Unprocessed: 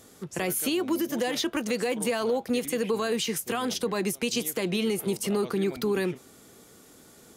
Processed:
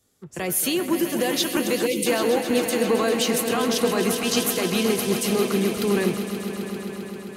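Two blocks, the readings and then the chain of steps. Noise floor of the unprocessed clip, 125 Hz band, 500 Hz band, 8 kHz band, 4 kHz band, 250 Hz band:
-54 dBFS, +5.5 dB, +5.5 dB, +6.5 dB, +6.5 dB, +5.5 dB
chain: swelling echo 0.132 s, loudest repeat 5, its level -10.5 dB; spectral gain 1.86–2.06, 540–2000 Hz -21 dB; three-band expander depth 70%; gain +4 dB

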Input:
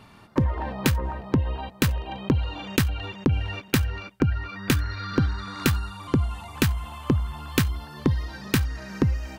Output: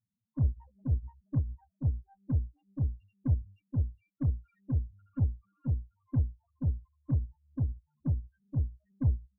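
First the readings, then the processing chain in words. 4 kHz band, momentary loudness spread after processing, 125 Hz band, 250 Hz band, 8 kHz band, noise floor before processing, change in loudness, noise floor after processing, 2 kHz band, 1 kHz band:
under -40 dB, 7 LU, -5.0 dB, -12.5 dB, under -40 dB, -49 dBFS, -8.0 dB, -85 dBFS, under -35 dB, under -25 dB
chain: loudest bins only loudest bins 2; added harmonics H 4 -26 dB, 8 -31 dB, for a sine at -17.5 dBFS; upward expander 2.5:1, over -41 dBFS

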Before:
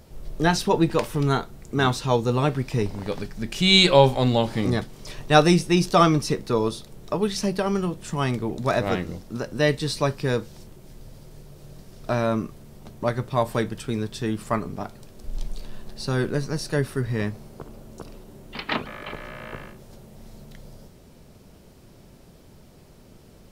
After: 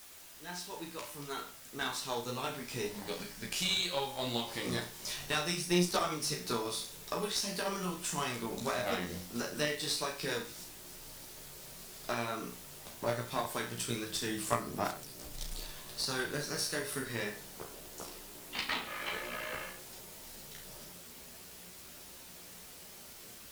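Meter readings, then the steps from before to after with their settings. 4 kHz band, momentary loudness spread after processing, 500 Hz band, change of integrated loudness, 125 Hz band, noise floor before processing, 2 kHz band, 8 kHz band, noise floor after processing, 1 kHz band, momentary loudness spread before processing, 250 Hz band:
-9.5 dB, 16 LU, -14.5 dB, -13.0 dB, -18.0 dB, -50 dBFS, -9.0 dB, -1.5 dB, -51 dBFS, -12.5 dB, 20 LU, -15.0 dB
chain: opening faded in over 5.50 s; tilt +3 dB/oct; compressor 6:1, threshold -29 dBFS, peak gain reduction 17.5 dB; flutter echo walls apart 5.8 m, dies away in 0.4 s; requantised 8-bit, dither triangular; chorus voices 6, 1.4 Hz, delay 14 ms, depth 3 ms; added harmonics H 5 -21 dB, 6 -22 dB, 7 -23 dB, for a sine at -13 dBFS; gain -1 dB

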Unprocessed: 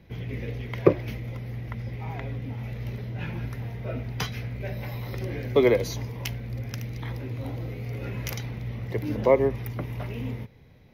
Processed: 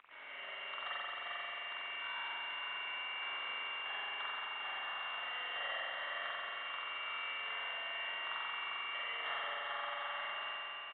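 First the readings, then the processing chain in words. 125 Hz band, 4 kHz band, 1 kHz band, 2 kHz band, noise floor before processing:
under -40 dB, +3.0 dB, -2.5 dB, +1.5 dB, -51 dBFS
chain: octaver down 2 oct, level -6 dB; frequency shift +170 Hz; hum 50 Hz, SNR 11 dB; upward compressor, threshold -36 dBFS; echo 0.4 s -13 dB; sample-rate reducer 2500 Hz, jitter 0%; ladder high-pass 1000 Hz, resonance 50%; compressor 16:1, threshold -43 dBFS, peak gain reduction 20 dB; spring tank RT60 3.7 s, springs 43 ms, chirp 40 ms, DRR -9.5 dB; gain -1.5 dB; G.726 40 kbps 8000 Hz

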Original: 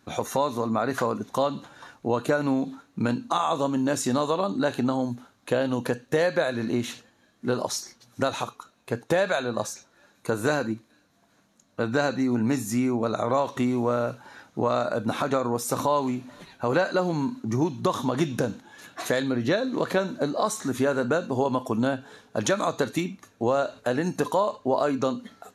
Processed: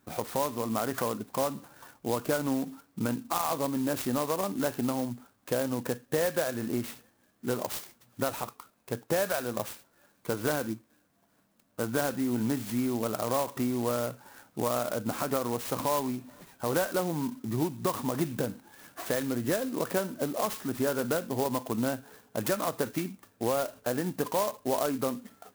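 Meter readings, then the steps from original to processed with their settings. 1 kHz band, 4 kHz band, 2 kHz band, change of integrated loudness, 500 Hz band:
-5.5 dB, -4.5 dB, -6.5 dB, -4.5 dB, -5.0 dB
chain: clock jitter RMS 0.071 ms; gain -5 dB

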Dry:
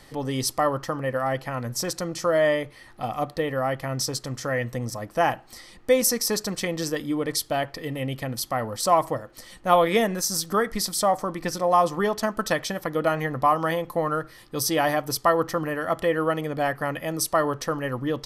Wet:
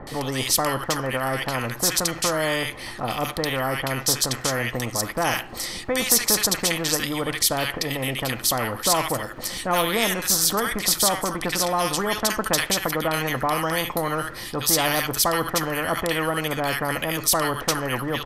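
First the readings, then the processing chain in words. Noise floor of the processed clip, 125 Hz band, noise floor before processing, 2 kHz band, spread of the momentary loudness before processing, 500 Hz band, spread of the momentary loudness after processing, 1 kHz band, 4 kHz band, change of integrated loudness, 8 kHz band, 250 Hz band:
-37 dBFS, +1.0 dB, -50 dBFS, +4.5 dB, 9 LU, -2.0 dB, 7 LU, -1.0 dB, +8.0 dB, +2.5 dB, +7.5 dB, +0.5 dB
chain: bands offset in time lows, highs 70 ms, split 1400 Hz; spectral compressor 2:1; gain +3.5 dB

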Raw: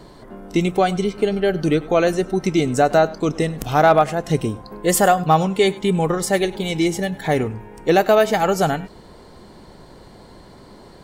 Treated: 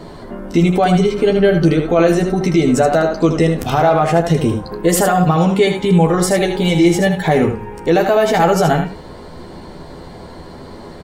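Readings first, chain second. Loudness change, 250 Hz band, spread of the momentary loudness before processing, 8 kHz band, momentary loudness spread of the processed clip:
+4.5 dB, +7.0 dB, 8 LU, +3.0 dB, 6 LU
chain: high shelf 3900 Hz -6 dB; limiter -15 dBFS, peak gain reduction 10 dB; on a send: early reflections 12 ms -4.5 dB, 78 ms -6.5 dB; on the sum: gain +8 dB

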